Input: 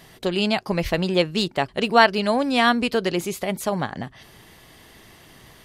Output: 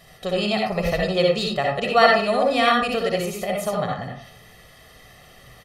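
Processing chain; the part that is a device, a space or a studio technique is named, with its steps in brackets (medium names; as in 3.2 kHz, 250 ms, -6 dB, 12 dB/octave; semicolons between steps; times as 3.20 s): microphone above a desk (comb 1.6 ms, depth 71%; reverberation RT60 0.40 s, pre-delay 55 ms, DRR -2 dB); trim -4.5 dB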